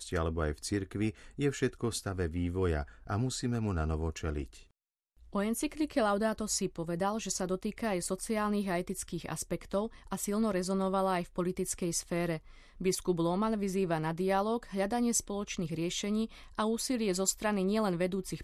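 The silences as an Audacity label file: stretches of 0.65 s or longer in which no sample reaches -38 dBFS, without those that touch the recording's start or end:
4.440000	5.350000	silence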